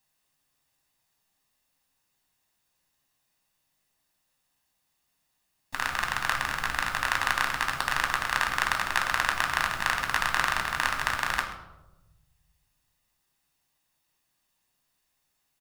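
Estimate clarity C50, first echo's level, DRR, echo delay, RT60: 8.0 dB, -17.0 dB, 2.5 dB, 0.132 s, 1.0 s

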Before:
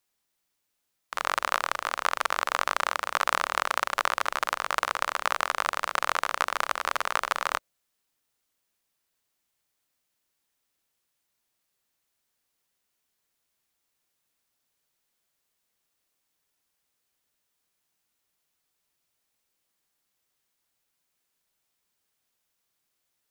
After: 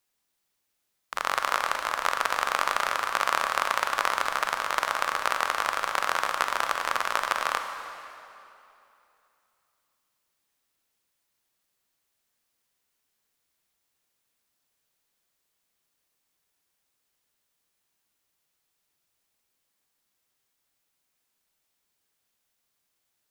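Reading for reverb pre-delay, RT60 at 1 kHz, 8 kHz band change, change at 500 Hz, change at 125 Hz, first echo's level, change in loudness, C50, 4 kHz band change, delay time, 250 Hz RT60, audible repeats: 33 ms, 2.8 s, +1.0 dB, +1.0 dB, n/a, none, +1.0 dB, 6.0 dB, +1.0 dB, none, 2.9 s, none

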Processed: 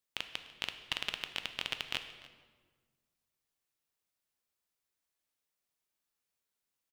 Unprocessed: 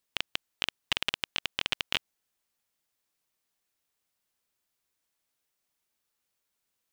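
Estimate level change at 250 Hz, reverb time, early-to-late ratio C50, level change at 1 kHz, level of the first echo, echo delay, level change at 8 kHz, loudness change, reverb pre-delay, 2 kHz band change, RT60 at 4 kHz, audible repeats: -6.0 dB, 1.5 s, 10.0 dB, -6.0 dB, -21.0 dB, 0.295 s, -6.0 dB, -6.0 dB, 7 ms, -6.0 dB, 1.0 s, 1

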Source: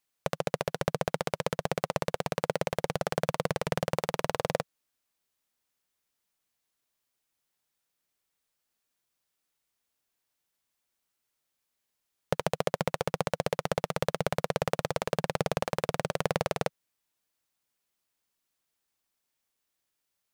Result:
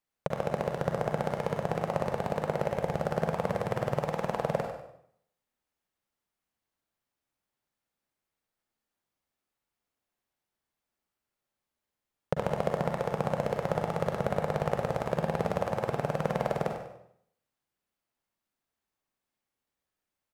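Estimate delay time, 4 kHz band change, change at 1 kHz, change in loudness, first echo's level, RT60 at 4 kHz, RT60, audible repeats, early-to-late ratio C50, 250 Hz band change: 98 ms, -9.0 dB, +0.5 dB, +0.5 dB, -10.0 dB, 0.60 s, 0.70 s, 1, 3.0 dB, +2.0 dB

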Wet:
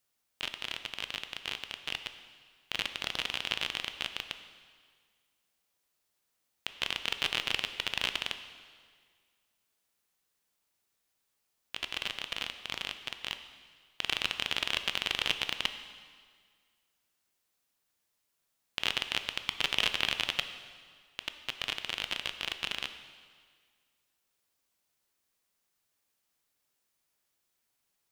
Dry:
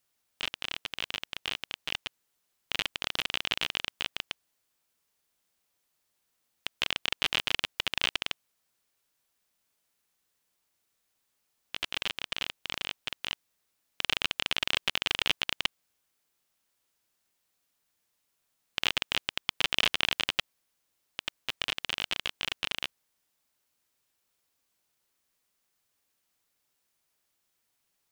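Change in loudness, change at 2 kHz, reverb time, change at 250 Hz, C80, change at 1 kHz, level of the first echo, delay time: -2.0 dB, -2.0 dB, 1.8 s, -2.0 dB, 11.0 dB, -2.0 dB, none, none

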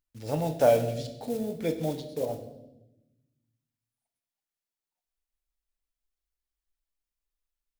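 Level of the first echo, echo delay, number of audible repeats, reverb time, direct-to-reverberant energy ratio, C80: none, none, none, 0.95 s, 6.5 dB, 12.5 dB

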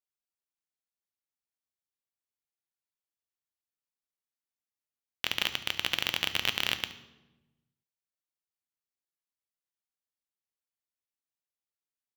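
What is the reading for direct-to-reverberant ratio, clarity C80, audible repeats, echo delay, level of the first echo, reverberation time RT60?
9.5 dB, 16.0 dB, 1, 72 ms, -17.0 dB, 1.1 s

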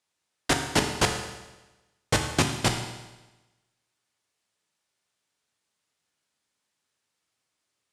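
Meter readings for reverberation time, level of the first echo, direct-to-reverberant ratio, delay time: 1.1 s, none, 3.5 dB, none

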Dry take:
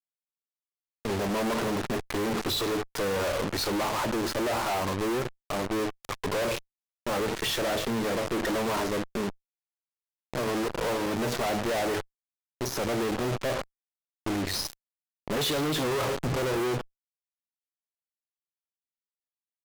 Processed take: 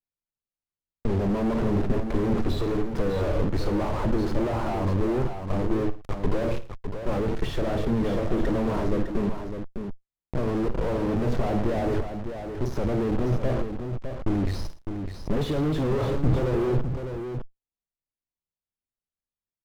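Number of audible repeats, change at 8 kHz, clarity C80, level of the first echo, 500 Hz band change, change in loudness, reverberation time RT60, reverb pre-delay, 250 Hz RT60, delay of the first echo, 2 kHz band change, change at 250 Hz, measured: 3, under -10 dB, none, -13.5 dB, +2.0 dB, +2.0 dB, none, none, none, 54 ms, -6.0 dB, +5.0 dB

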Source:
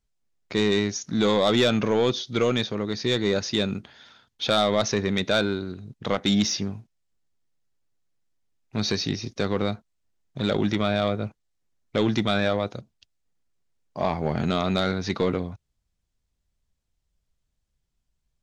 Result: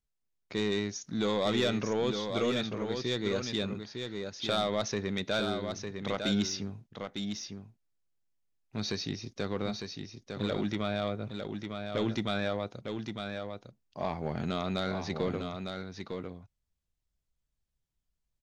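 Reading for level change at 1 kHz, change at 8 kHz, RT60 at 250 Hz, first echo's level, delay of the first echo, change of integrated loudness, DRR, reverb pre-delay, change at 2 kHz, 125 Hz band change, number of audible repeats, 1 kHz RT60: -7.5 dB, -7.5 dB, none, -6.0 dB, 0.904 s, -9.0 dB, none, none, -7.5 dB, -7.5 dB, 1, none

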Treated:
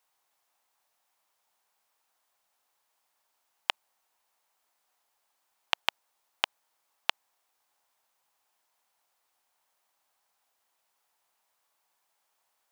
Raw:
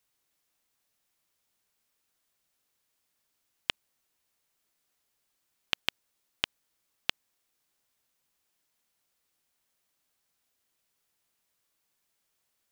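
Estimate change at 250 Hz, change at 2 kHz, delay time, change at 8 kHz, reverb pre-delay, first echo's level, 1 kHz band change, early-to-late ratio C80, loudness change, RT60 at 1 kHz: -5.5 dB, +2.5 dB, none, 0.0 dB, none, none, +9.0 dB, none, +2.0 dB, none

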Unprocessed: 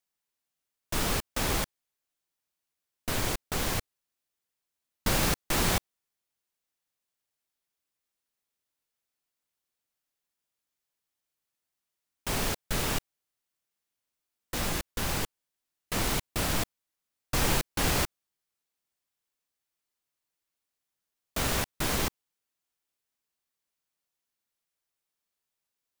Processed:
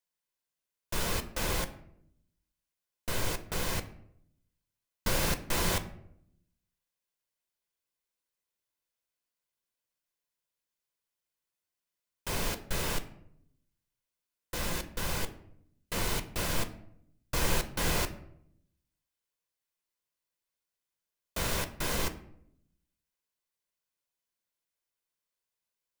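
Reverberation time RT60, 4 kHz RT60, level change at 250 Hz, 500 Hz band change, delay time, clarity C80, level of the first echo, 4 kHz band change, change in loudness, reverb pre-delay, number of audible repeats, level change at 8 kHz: 0.70 s, 0.45 s, -4.0 dB, -2.0 dB, none, 17.0 dB, none, -3.0 dB, -3.0 dB, 6 ms, none, -3.5 dB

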